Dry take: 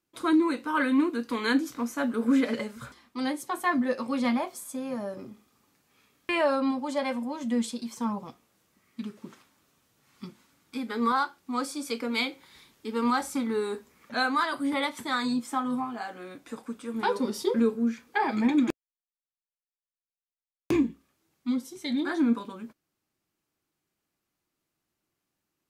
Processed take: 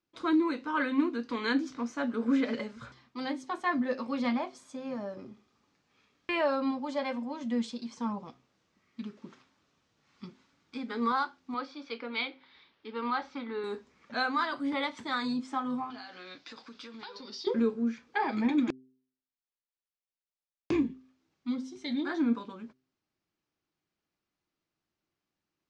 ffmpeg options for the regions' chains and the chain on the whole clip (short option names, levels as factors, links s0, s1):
-filter_complex "[0:a]asettb=1/sr,asplit=3[s0][s1][s2];[s0]atrim=end=11.544[s3];[s1]atrim=start=11.54:end=13.64,asetpts=PTS-STARTPTS,afade=t=in:d=0.004:c=qsin,afade=t=out:st=2.096:d=0.004:c=qsin,lowpass=f=4100:w=0.5412,lowpass=f=4100:w=1.3066,lowshelf=f=290:g=-11.5[s4];[s2]atrim=start=13.636[s5];[s3][s4]acrossfade=d=0.004:c1=hsin:c2=qsin[s6];[s6][s5]acrossfade=d=0.004:c1=qsin:c2=hsin,asettb=1/sr,asplit=3[s7][s8][s9];[s7]atrim=end=15.904[s10];[s8]atrim=start=15.9:end=17.47,asetpts=PTS-STARTPTS,afade=t=in:d=0.004:c=qsin,afade=t=out:st=1.566:d=0.004:c=qsin,tiltshelf=f=910:g=-6,acompressor=threshold=0.0112:ratio=10:attack=3.2:release=140:knee=1:detection=peak,lowpass=f=4700:t=q:w=3.1[s11];[s9]atrim=start=17.466[s12];[s10][s11]acrossfade=d=0.004:c1=hsin:c2=qsin[s13];[s13][s12]acrossfade=d=0.004:c1=qsin:c2=hsin,lowpass=f=6000:w=0.5412,lowpass=f=6000:w=1.3066,bandreject=f=129.7:t=h:w=4,bandreject=f=259.4:t=h:w=4,bandreject=f=389.1:t=h:w=4,volume=0.668"